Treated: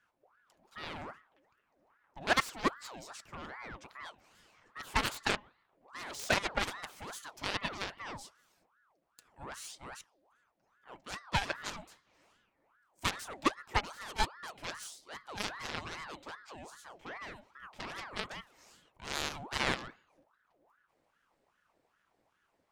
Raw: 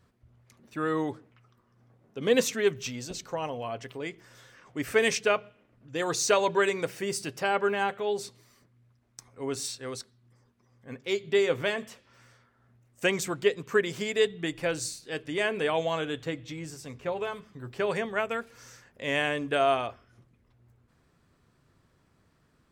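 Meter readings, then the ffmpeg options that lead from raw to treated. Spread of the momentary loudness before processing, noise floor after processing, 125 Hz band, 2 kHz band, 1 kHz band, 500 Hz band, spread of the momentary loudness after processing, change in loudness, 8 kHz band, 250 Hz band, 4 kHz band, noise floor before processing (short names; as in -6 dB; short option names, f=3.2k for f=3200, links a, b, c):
14 LU, -77 dBFS, -6.5 dB, -5.5 dB, -5.0 dB, -17.0 dB, 18 LU, -8.0 dB, -9.0 dB, -10.0 dB, -4.0 dB, -68 dBFS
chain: -af "aeval=exprs='0.335*(cos(1*acos(clip(val(0)/0.335,-1,1)))-cos(1*PI/2))+0.0473*(cos(5*acos(clip(val(0)/0.335,-1,1)))-cos(5*PI/2))+0.119*(cos(7*acos(clip(val(0)/0.335,-1,1)))-cos(7*PI/2))+0.0075*(cos(8*acos(clip(val(0)/0.335,-1,1)))-cos(8*PI/2))':c=same,aeval=exprs='val(0)*sin(2*PI*1000*n/s+1000*0.6/2.5*sin(2*PI*2.5*n/s))':c=same,volume=-4.5dB"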